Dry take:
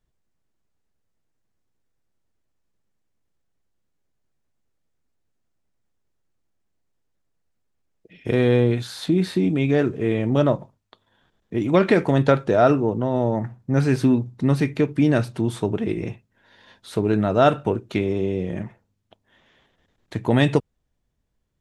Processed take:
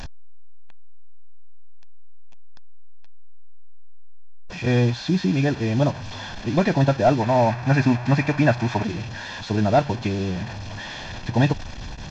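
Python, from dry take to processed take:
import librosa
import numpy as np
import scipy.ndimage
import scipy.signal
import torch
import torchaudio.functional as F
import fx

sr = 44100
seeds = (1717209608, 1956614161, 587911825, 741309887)

y = fx.delta_mod(x, sr, bps=32000, step_db=-27.5)
y = y + 0.51 * np.pad(y, (int(1.2 * sr / 1000.0), 0))[:len(y)]
y = fx.stretch_vocoder(y, sr, factor=0.56)
y = fx.spec_box(y, sr, start_s=7.2, length_s=1.64, low_hz=540.0, high_hz=2700.0, gain_db=7)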